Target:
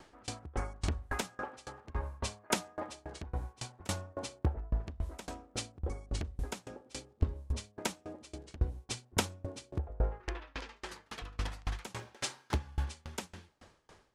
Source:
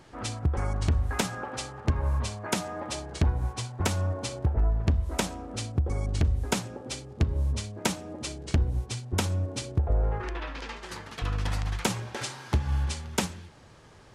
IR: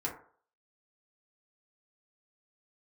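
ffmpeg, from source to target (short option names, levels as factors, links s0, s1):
-filter_complex "[0:a]equalizer=f=120:t=o:w=1.2:g=-8.5,asplit=3[s0][s1][s2];[s0]afade=t=out:st=11.97:d=0.02[s3];[s1]acrusher=bits=9:mode=log:mix=0:aa=0.000001,afade=t=in:st=11.97:d=0.02,afade=t=out:st=12.54:d=0.02[s4];[s2]afade=t=in:st=12.54:d=0.02[s5];[s3][s4][s5]amix=inputs=3:normalize=0,aeval=exprs='val(0)*pow(10,-29*if(lt(mod(3.6*n/s,1),2*abs(3.6)/1000),1-mod(3.6*n/s,1)/(2*abs(3.6)/1000),(mod(3.6*n/s,1)-2*abs(3.6)/1000)/(1-2*abs(3.6)/1000))/20)':c=same,volume=1.19"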